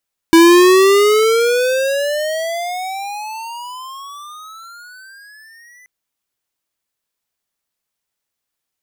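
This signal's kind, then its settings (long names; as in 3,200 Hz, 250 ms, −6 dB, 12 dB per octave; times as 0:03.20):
pitch glide with a swell square, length 5.53 s, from 327 Hz, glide +31.5 semitones, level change −38.5 dB, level −6 dB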